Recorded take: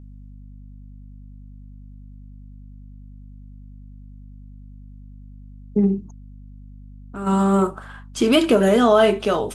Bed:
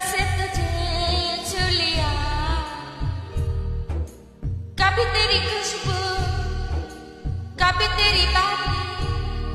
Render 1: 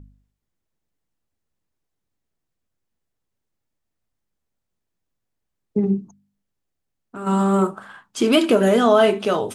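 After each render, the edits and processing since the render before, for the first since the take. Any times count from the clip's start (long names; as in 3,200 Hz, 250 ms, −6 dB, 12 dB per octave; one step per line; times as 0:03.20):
hum removal 50 Hz, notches 5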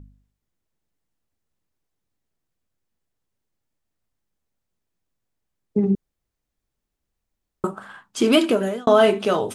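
0:05.95–0:07.64: fill with room tone
0:08.37–0:08.87: fade out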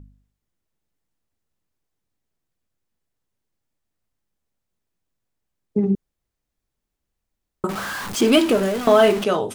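0:07.69–0:09.24: converter with a step at zero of −24.5 dBFS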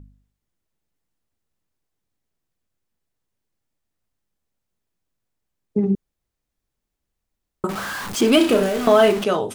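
0:08.37–0:08.88: flutter between parallel walls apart 5.6 metres, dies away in 0.34 s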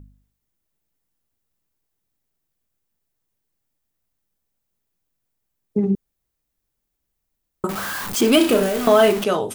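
high-shelf EQ 11,000 Hz +11.5 dB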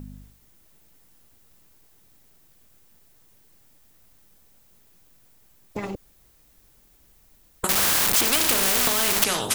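downward compressor, threshold −15 dBFS, peak gain reduction 6 dB
every bin compressed towards the loudest bin 4 to 1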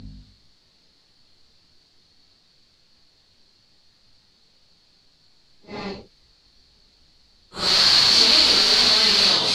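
random phases in long frames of 200 ms
low-pass with resonance 4,400 Hz, resonance Q 10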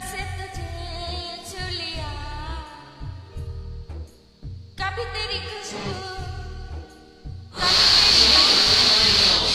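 mix in bed −8.5 dB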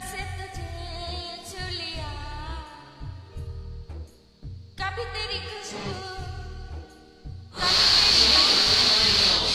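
level −3 dB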